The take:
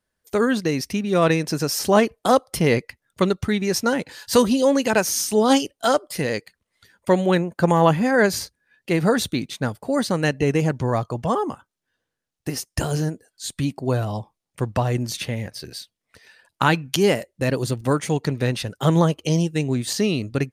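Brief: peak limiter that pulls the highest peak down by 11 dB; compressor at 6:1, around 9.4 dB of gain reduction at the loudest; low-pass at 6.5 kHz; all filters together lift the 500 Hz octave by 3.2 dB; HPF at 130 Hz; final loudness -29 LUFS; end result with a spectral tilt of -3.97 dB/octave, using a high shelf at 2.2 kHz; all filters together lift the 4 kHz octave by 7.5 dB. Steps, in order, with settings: high-pass 130 Hz; low-pass 6.5 kHz; peaking EQ 500 Hz +3.5 dB; treble shelf 2.2 kHz +5 dB; peaking EQ 4 kHz +5.5 dB; compression 6:1, threshold -18 dBFS; trim -4 dB; peak limiter -16.5 dBFS

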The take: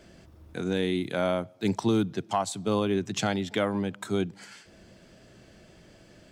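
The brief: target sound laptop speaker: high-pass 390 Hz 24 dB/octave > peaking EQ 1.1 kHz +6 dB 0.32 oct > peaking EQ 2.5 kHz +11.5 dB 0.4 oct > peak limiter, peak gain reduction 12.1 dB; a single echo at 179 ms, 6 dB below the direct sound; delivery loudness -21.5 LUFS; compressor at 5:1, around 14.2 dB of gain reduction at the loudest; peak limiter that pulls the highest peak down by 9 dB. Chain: compression 5:1, threshold -37 dBFS; peak limiter -32.5 dBFS; high-pass 390 Hz 24 dB/octave; peaking EQ 1.1 kHz +6 dB 0.32 oct; peaking EQ 2.5 kHz +11.5 dB 0.4 oct; delay 179 ms -6 dB; trim +28 dB; peak limiter -11 dBFS

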